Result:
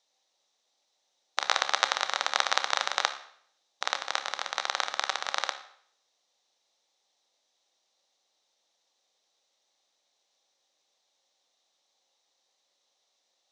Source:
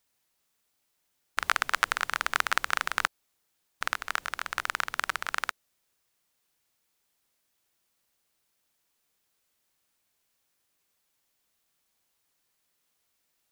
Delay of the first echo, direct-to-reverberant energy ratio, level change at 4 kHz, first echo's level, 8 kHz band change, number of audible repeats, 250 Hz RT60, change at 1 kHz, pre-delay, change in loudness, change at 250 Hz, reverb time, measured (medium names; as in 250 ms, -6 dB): no echo, 8.5 dB, +6.0 dB, no echo, +3.0 dB, no echo, 0.60 s, +1.0 dB, 15 ms, +0.5 dB, -3.5 dB, 0.60 s